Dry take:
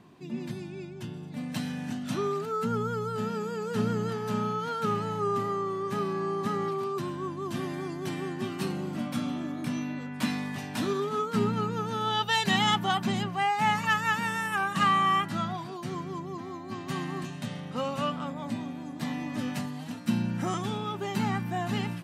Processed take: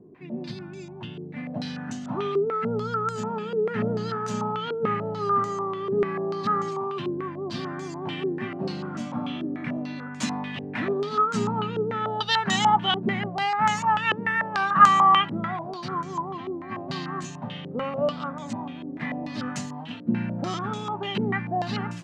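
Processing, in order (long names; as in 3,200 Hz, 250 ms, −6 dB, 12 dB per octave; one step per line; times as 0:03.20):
0:14.40–0:16.87: parametric band 1,000 Hz +4.5 dB 1.5 octaves
low-pass on a step sequencer 6.8 Hz 420–6,800 Hz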